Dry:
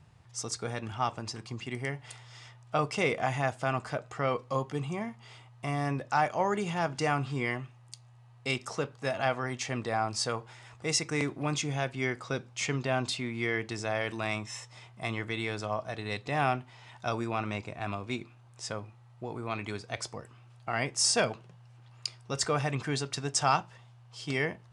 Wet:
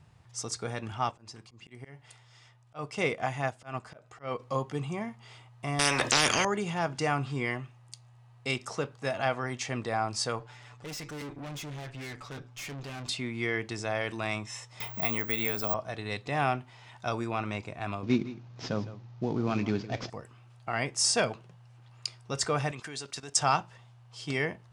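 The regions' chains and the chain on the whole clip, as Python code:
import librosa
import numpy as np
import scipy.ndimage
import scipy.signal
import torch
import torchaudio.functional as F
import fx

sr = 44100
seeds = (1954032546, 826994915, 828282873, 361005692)

y = fx.chain(x, sr, fx.auto_swell(attack_ms=138.0),
    fx.upward_expand(threshold_db=-39.0, expansion=1.5), at=(1.11, 4.4))
y = fx.chain(y, sr, fx.peak_eq(hz=260.0, db=14.0, octaves=3.0),
    fx.spectral_comp(ratio=10.0), at=(5.79, 6.45))
y = fx.chain(y, sr, fx.lowpass(hz=7700.0, slope=12),
    fx.comb(ms=6.9, depth=0.81),
    fx.tube_stage(drive_db=38.0, bias=0.5), at=(10.39, 13.09))
y = fx.chain(y, sr, fx.resample_bad(factor=2, down='none', up='zero_stuff'),
    fx.comb(ms=4.4, depth=0.32),
    fx.band_squash(depth_pct=70), at=(14.8, 15.74))
y = fx.chain(y, sr, fx.cvsd(bps=32000),
    fx.peak_eq(hz=210.0, db=13.0, octaves=2.0),
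    fx.echo_single(ms=160, db=-15.5), at=(18.03, 20.1))
y = fx.chain(y, sr, fx.highpass(hz=240.0, slope=6),
    fx.level_steps(step_db=14),
    fx.high_shelf(hz=3100.0, db=7.5), at=(22.71, 23.37))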